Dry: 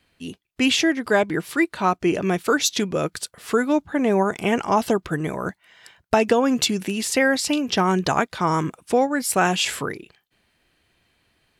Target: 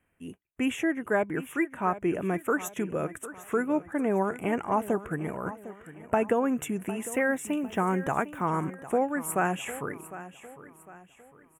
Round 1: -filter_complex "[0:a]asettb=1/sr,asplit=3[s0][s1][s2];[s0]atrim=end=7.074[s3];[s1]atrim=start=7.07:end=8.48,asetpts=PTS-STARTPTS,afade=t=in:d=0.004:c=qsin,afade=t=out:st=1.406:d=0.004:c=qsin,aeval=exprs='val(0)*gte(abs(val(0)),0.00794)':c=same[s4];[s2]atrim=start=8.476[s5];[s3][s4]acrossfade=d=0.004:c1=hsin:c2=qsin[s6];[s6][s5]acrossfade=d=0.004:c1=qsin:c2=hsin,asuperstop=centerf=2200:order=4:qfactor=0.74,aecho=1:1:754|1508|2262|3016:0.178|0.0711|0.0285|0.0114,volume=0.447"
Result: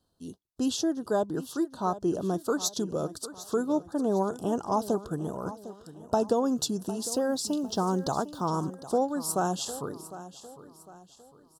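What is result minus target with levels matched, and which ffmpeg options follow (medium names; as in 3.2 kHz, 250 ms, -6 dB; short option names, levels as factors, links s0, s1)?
2 kHz band -12.5 dB
-filter_complex "[0:a]asettb=1/sr,asplit=3[s0][s1][s2];[s0]atrim=end=7.074[s3];[s1]atrim=start=7.07:end=8.48,asetpts=PTS-STARTPTS,afade=t=in:d=0.004:c=qsin,afade=t=out:st=1.406:d=0.004:c=qsin,aeval=exprs='val(0)*gte(abs(val(0)),0.00794)':c=same[s4];[s2]atrim=start=8.476[s5];[s3][s4]acrossfade=d=0.004:c1=hsin:c2=qsin[s6];[s6][s5]acrossfade=d=0.004:c1=qsin:c2=hsin,asuperstop=centerf=4500:order=4:qfactor=0.74,aecho=1:1:754|1508|2262|3016:0.178|0.0711|0.0285|0.0114,volume=0.447"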